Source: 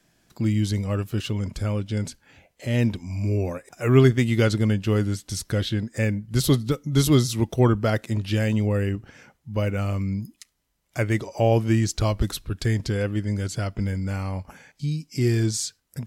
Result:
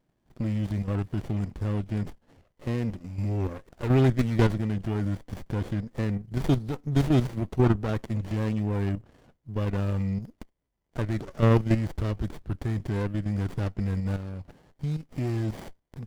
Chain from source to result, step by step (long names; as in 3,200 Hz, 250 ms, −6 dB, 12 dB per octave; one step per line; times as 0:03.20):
output level in coarse steps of 9 dB
windowed peak hold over 33 samples